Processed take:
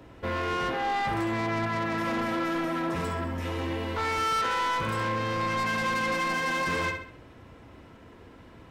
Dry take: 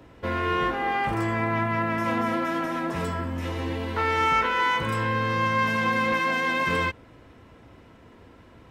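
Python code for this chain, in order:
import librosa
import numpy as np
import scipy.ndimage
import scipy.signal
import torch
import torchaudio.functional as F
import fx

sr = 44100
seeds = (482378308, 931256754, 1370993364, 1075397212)

y = fx.echo_feedback(x, sr, ms=66, feedback_pct=39, wet_db=-8.0)
y = 10.0 ** (-24.0 / 20.0) * np.tanh(y / 10.0 ** (-24.0 / 20.0))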